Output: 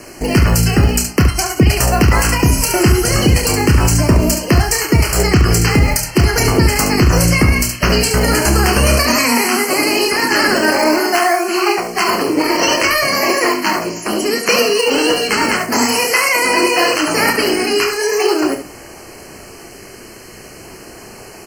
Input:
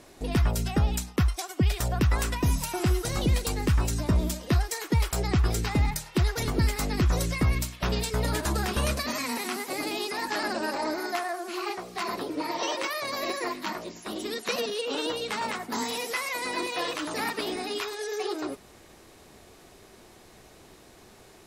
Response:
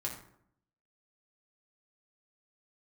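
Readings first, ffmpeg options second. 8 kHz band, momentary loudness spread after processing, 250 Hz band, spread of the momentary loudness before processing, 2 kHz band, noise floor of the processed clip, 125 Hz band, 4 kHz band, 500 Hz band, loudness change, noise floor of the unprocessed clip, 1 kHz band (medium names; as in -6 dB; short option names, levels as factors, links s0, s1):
+18.0 dB, 3 LU, +15.5 dB, 6 LU, +18.0 dB, -36 dBFS, +12.5 dB, +16.0 dB, +16.5 dB, +15.5 dB, -53 dBFS, +15.5 dB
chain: -filter_complex "[0:a]acrossover=split=510|910[s0][s1][s2];[s1]acrusher=samples=25:mix=1:aa=0.000001:lfo=1:lforange=25:lforate=0.41[s3];[s0][s3][s2]amix=inputs=3:normalize=0,asuperstop=centerf=3600:order=20:qfactor=3.6,lowshelf=f=200:g=-5,aecho=1:1:29|71:0.422|0.398,asplit=2[s4][s5];[1:a]atrim=start_sample=2205[s6];[s5][s6]afir=irnorm=-1:irlink=0,volume=0.133[s7];[s4][s7]amix=inputs=2:normalize=0,alimiter=level_in=7.5:limit=0.891:release=50:level=0:latency=1,volume=0.891"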